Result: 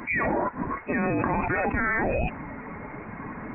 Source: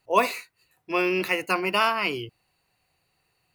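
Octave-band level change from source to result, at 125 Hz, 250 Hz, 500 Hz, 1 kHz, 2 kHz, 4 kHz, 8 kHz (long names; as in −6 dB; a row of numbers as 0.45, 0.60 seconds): +10.0 dB, +3.5 dB, −1.5 dB, −2.0 dB, 0.0 dB, below −25 dB, below −35 dB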